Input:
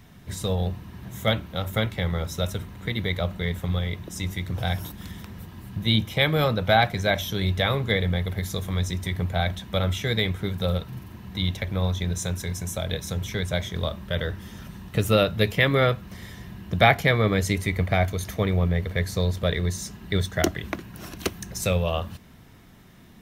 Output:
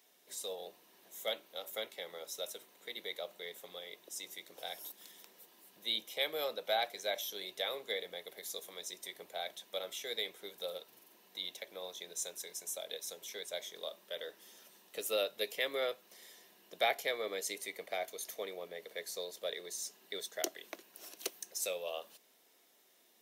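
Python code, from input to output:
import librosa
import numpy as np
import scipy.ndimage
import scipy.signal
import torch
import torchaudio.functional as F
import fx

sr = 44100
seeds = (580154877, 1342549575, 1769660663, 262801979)

y = scipy.signal.sosfilt(scipy.signal.butter(4, 470.0, 'highpass', fs=sr, output='sos'), x)
y = fx.peak_eq(y, sr, hz=1300.0, db=-15.0, octaves=2.5)
y = y * librosa.db_to_amplitude(-3.5)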